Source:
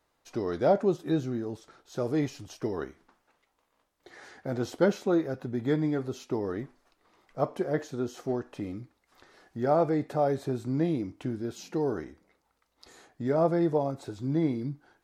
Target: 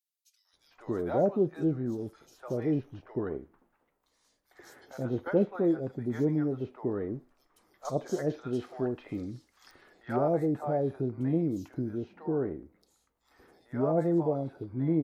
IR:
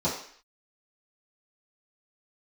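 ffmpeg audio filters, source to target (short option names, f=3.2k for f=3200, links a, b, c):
-filter_complex "[0:a]asetnsamples=n=441:p=0,asendcmd='7.85 equalizer g 2.5;9.71 equalizer g -13',equalizer=f=5.2k:t=o:w=2.7:g=-11.5,acrossover=split=760|3700[a][b][c];[b]adelay=450[d];[a]adelay=530[e];[e][d][c]amix=inputs=3:normalize=0"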